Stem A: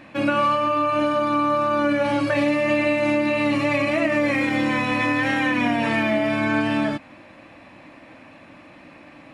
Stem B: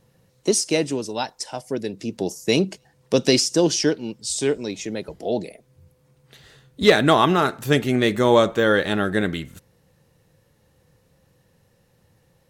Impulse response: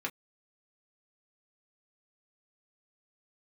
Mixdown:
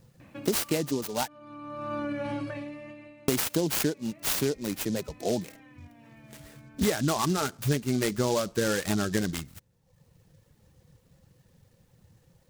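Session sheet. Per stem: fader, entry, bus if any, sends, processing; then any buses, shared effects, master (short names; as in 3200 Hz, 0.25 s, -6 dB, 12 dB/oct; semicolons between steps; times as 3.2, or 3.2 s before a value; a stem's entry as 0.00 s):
-6.0 dB, 0.20 s, no send, low shelf 230 Hz +10.5 dB; compressor 12:1, threshold -23 dBFS, peak gain reduction 10.5 dB; auto duck -21 dB, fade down 0.90 s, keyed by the second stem
-2.0 dB, 0.00 s, muted 1.28–3.28, no send, reverb removal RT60 0.9 s; tone controls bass +7 dB, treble +4 dB; noise-modulated delay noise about 5000 Hz, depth 0.066 ms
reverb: off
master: compressor 6:1, threshold -23 dBFS, peak gain reduction 13.5 dB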